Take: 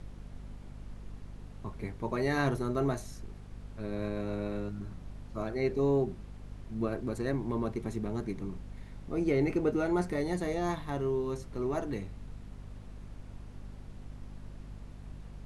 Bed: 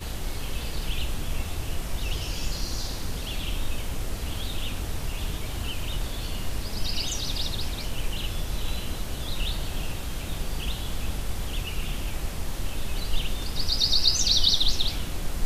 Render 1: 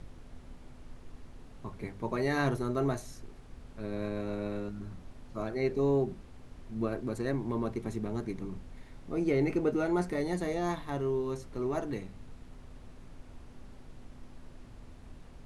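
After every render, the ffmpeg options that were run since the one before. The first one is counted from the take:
-af "bandreject=f=50:t=h:w=4,bandreject=f=100:t=h:w=4,bandreject=f=150:t=h:w=4,bandreject=f=200:t=h:w=4"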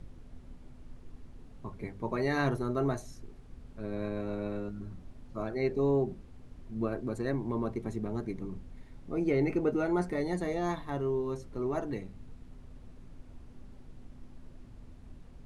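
-af "afftdn=nr=6:nf=-51"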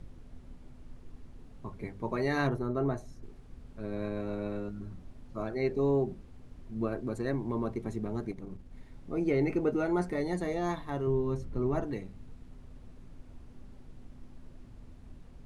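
-filter_complex "[0:a]asettb=1/sr,asplit=3[s0][s1][s2];[s0]atrim=end=2.474[s3];[s1]atrim=start=2.47:end=3.23,asetpts=PTS-STARTPTS,afade=t=in:d=0.004:c=qsin,afade=t=out:st=0.756:d=0.004:c=qsin,highshelf=f=2300:g=-10.5[s4];[s2]atrim=start=3.226[s5];[s3][s4]acrossfade=d=0.004:c1=hsin:c2=qsin[s6];[s6][s5]acrossfade=d=0.004:c1=qsin:c2=hsin,asettb=1/sr,asplit=3[s7][s8][s9];[s7]atrim=end=8.314[s10];[s8]atrim=start=8.31:end=8.73,asetpts=PTS-STARTPTS,afade=t=in:d=0.004:c=qsin,afade=t=out:st=0.416:d=0.004:c=qsin,aeval=exprs='(tanh(35.5*val(0)+0.7)-tanh(0.7))/35.5':c=same[s11];[s9]atrim=start=8.726[s12];[s10][s11]acrossfade=d=0.004:c1=hsin:c2=qsin[s13];[s13][s12]acrossfade=d=0.004:c1=qsin:c2=hsin,asettb=1/sr,asplit=3[s14][s15][s16];[s14]atrim=end=11.074[s17];[s15]atrim=start=11.07:end=11.84,asetpts=PTS-STARTPTS,afade=t=in:d=0.004:c=qsin,afade=t=out:st=0.766:d=0.004:c=qsin,bass=f=250:g=8,treble=f=4000:g=-4[s18];[s16]atrim=start=11.836[s19];[s17][s18]acrossfade=d=0.004:c1=hsin:c2=qsin[s20];[s20][s19]acrossfade=d=0.004:c1=qsin:c2=hsin"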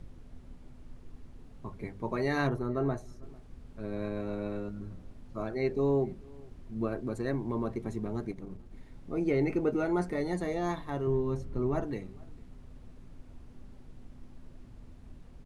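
-filter_complex "[0:a]asplit=2[s0][s1];[s1]adelay=449,volume=0.0562,highshelf=f=4000:g=-10.1[s2];[s0][s2]amix=inputs=2:normalize=0"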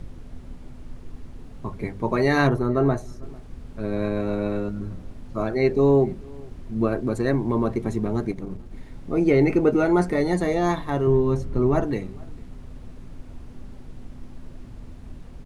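-af "volume=3.16"

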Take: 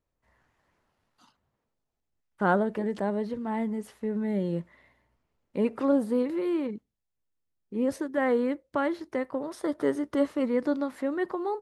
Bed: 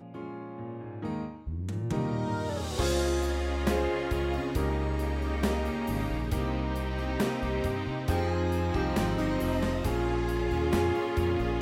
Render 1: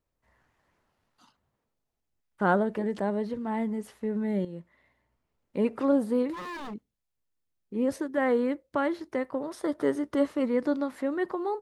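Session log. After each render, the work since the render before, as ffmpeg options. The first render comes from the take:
-filter_complex "[0:a]asplit=3[s0][s1][s2];[s0]afade=t=out:st=6.32:d=0.02[s3];[s1]aeval=exprs='0.0224*(abs(mod(val(0)/0.0224+3,4)-2)-1)':c=same,afade=t=in:st=6.32:d=0.02,afade=t=out:st=6.73:d=0.02[s4];[s2]afade=t=in:st=6.73:d=0.02[s5];[s3][s4][s5]amix=inputs=3:normalize=0,asplit=2[s6][s7];[s6]atrim=end=4.45,asetpts=PTS-STARTPTS,afade=t=out:st=4.446:d=0.004:c=hsin:silence=0.251189[s8];[s7]atrim=start=4.45,asetpts=PTS-STARTPTS,afade=t=in:d=1.16:silence=0.251189[s9];[s8][s9]concat=n=2:v=0:a=1"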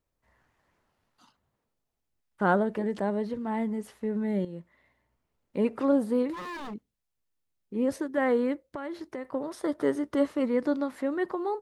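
-filter_complex "[0:a]asettb=1/sr,asplit=3[s0][s1][s2];[s0]atrim=end=8.694[s3];[s1]atrim=start=8.69:end=9.25,asetpts=PTS-STARTPTS,afade=t=in:d=0.004:c=qsin,afade=t=out:st=0.556:d=0.004:c=qsin,acompressor=threshold=0.0251:ratio=6:attack=3.2:release=140:knee=1:detection=peak[s4];[s2]atrim=start=9.246[s5];[s3][s4]acrossfade=d=0.004:c1=hsin:c2=qsin[s6];[s6][s5]acrossfade=d=0.004:c1=qsin:c2=hsin"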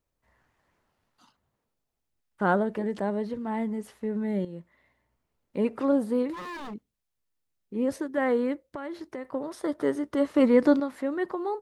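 -filter_complex "[0:a]asettb=1/sr,asplit=3[s0][s1][s2];[s0]atrim=end=10.344[s3];[s1]atrim=start=10.34:end=10.8,asetpts=PTS-STARTPTS,afade=t=in:d=0.004:c=qsin,afade=t=out:st=0.456:d=0.004:c=qsin,acontrast=89[s4];[s2]atrim=start=10.796[s5];[s3][s4]acrossfade=d=0.004:c1=hsin:c2=qsin[s6];[s6][s5]acrossfade=d=0.004:c1=qsin:c2=hsin"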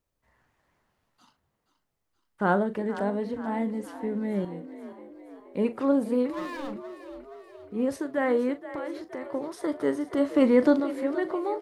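-filter_complex "[0:a]asplit=2[s0][s1];[s1]adelay=40,volume=0.224[s2];[s0][s2]amix=inputs=2:normalize=0,asplit=7[s3][s4][s5][s6][s7][s8][s9];[s4]adelay=474,afreqshift=43,volume=0.211[s10];[s5]adelay=948,afreqshift=86,volume=0.119[s11];[s6]adelay=1422,afreqshift=129,volume=0.0661[s12];[s7]adelay=1896,afreqshift=172,volume=0.0372[s13];[s8]adelay=2370,afreqshift=215,volume=0.0209[s14];[s9]adelay=2844,afreqshift=258,volume=0.0116[s15];[s3][s10][s11][s12][s13][s14][s15]amix=inputs=7:normalize=0"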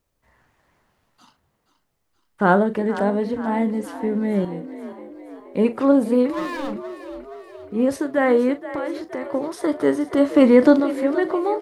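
-af "volume=2.37,alimiter=limit=0.708:level=0:latency=1"

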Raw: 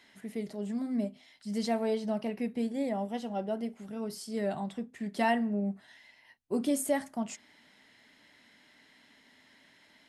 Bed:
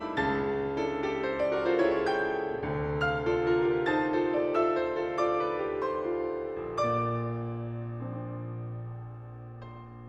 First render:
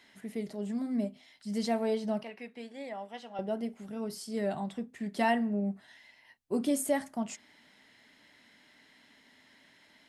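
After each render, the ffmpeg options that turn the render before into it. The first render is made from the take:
-filter_complex "[0:a]asettb=1/sr,asplit=3[s0][s1][s2];[s0]atrim=end=2.234[s3];[s1]atrim=start=2.23:end=3.39,asetpts=PTS-STARTPTS,afade=t=in:d=0.004:c=qsin,afade=t=out:st=1.156:d=0.004:c=qsin,bandpass=f=2100:t=q:w=0.58[s4];[s2]atrim=start=3.386[s5];[s3][s4]acrossfade=d=0.004:c1=hsin:c2=qsin[s6];[s6][s5]acrossfade=d=0.004:c1=qsin:c2=hsin"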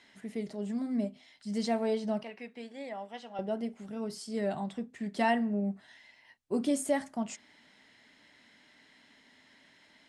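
-af "lowpass=f=9600:w=0.5412,lowpass=f=9600:w=1.3066"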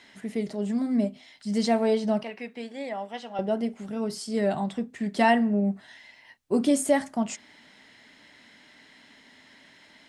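-af "volume=2.24"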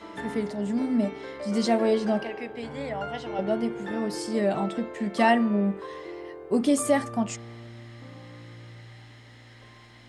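-filter_complex "[1:a]volume=0.398[s0];[0:a][s0]amix=inputs=2:normalize=0"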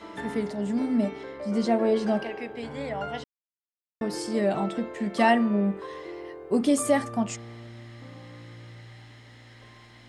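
-filter_complex "[0:a]asettb=1/sr,asplit=3[s0][s1][s2];[s0]atrim=end=1.234[s3];[s1]atrim=start=1.23:end=1.96,asetpts=PTS-STARTPTS,afade=t=in:d=0.004:c=qsin,afade=t=out:st=0.726:d=0.004:c=qsin,highshelf=f=2300:g=-8.5[s4];[s2]atrim=start=1.956[s5];[s3][s4]acrossfade=d=0.004:c1=hsin:c2=qsin[s6];[s6][s5]acrossfade=d=0.004:c1=qsin:c2=hsin,asplit=3[s7][s8][s9];[s7]atrim=end=3.24,asetpts=PTS-STARTPTS,afade=t=out:st=3.236:d=0.004:c=hsin[s10];[s8]atrim=start=3.24:end=4.01,asetpts=PTS-STARTPTS,volume=0[s11];[s9]atrim=start=4.01,asetpts=PTS-STARTPTS,afade=t=in:d=0.004:c=hsin[s12];[s10][s11][s12]concat=n=3:v=0:a=1"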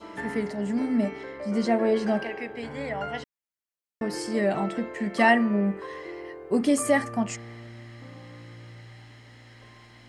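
-af "bandreject=f=3600:w=11,adynamicequalizer=threshold=0.00251:dfrequency=1900:dqfactor=2.9:tfrequency=1900:tqfactor=2.9:attack=5:release=100:ratio=0.375:range=3:mode=boostabove:tftype=bell"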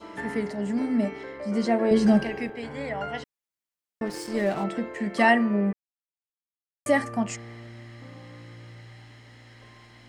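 -filter_complex "[0:a]asettb=1/sr,asplit=3[s0][s1][s2];[s0]atrim=end=1.914[s3];[s1]atrim=start=1.91:end=2.5,asetpts=PTS-STARTPTS,afade=t=in:d=0.004:c=qsin,afade=t=out:st=0.586:d=0.004:c=qsin,bass=f=250:g=14,treble=f=4000:g=8[s4];[s2]atrim=start=2.496[s5];[s3][s4]acrossfade=d=0.004:c1=hsin:c2=qsin[s6];[s6][s5]acrossfade=d=0.004:c1=qsin:c2=hsin,asplit=3[s7][s8][s9];[s7]afade=t=out:st=4.05:d=0.02[s10];[s8]aeval=exprs='sgn(val(0))*max(abs(val(0))-0.00944,0)':c=same,afade=t=in:st=4.05:d=0.02,afade=t=out:st=4.63:d=0.02[s11];[s9]afade=t=in:st=4.63:d=0.02[s12];[s10][s11][s12]amix=inputs=3:normalize=0,asplit=3[s13][s14][s15];[s13]atrim=end=5.73,asetpts=PTS-STARTPTS,afade=t=out:st=5.726:d=0.004:c=hsin[s16];[s14]atrim=start=5.73:end=6.86,asetpts=PTS-STARTPTS,volume=0[s17];[s15]atrim=start=6.86,asetpts=PTS-STARTPTS,afade=t=in:d=0.004:c=hsin[s18];[s16][s17][s18]concat=n=3:v=0:a=1"

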